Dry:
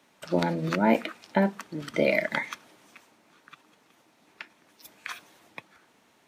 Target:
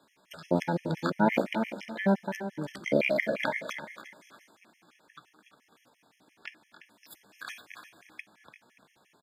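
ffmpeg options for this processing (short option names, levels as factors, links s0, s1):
-filter_complex "[0:a]asplit=2[s0][s1];[s1]adelay=239.1,volume=0.251,highshelf=f=4000:g=-5.38[s2];[s0][s2]amix=inputs=2:normalize=0,atempo=0.68,asplit=2[s3][s4];[s4]aecho=0:1:289|578|867:0.299|0.0776|0.0202[s5];[s3][s5]amix=inputs=2:normalize=0,afftfilt=real='re*gt(sin(2*PI*5.8*pts/sr)*(1-2*mod(floor(b*sr/1024/1700),2)),0)':imag='im*gt(sin(2*PI*5.8*pts/sr)*(1-2*mod(floor(b*sr/1024/1700),2)),0)':win_size=1024:overlap=0.75"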